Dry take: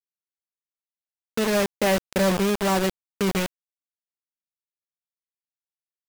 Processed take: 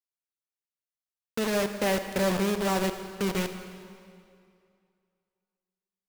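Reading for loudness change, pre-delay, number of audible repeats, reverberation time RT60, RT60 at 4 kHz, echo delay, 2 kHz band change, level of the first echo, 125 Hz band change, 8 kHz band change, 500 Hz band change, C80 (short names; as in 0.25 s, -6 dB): -4.5 dB, 37 ms, none, 2.4 s, 2.0 s, none, -4.5 dB, none, -4.5 dB, -4.5 dB, -4.5 dB, 9.5 dB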